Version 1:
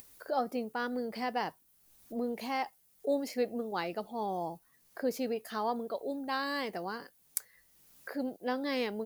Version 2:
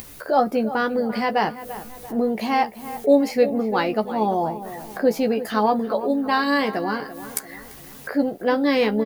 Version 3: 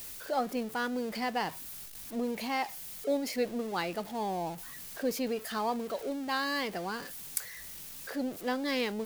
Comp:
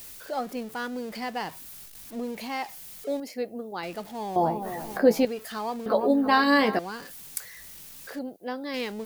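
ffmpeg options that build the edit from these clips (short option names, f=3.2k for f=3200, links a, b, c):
-filter_complex "[0:a]asplit=2[a][b];[1:a]asplit=2[c][d];[2:a]asplit=5[e][f][g][h][i];[e]atrim=end=3.202[j];[a]atrim=start=3.198:end=3.832[k];[f]atrim=start=3.828:end=4.362[l];[c]atrim=start=4.358:end=5.252[m];[g]atrim=start=5.248:end=5.862[n];[d]atrim=start=5.858:end=6.792[o];[h]atrim=start=6.788:end=8.192[p];[b]atrim=start=8.188:end=8.742[q];[i]atrim=start=8.738[r];[j][k]acrossfade=d=0.004:c1=hsin:c2=hsin[s];[s][l]acrossfade=d=0.004:c1=hsin:c2=hsin[t];[t][m]acrossfade=d=0.004:c1=hsin:c2=hsin[u];[u][n]acrossfade=d=0.004:c1=hsin:c2=hsin[v];[v][o]acrossfade=d=0.004:c1=hsin:c2=hsin[w];[w][p]acrossfade=d=0.004:c1=hsin:c2=hsin[x];[x][q]acrossfade=d=0.004:c1=hsin:c2=hsin[y];[y][r]acrossfade=d=0.004:c1=hsin:c2=hsin"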